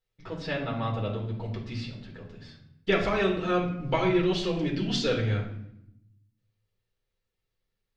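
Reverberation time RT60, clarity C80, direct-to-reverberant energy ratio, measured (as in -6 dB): 0.75 s, 9.5 dB, -2.5 dB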